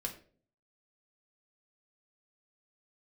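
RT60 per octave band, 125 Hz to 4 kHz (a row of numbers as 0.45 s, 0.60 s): 0.70 s, 0.65 s, 0.55 s, 0.35 s, 0.35 s, 0.30 s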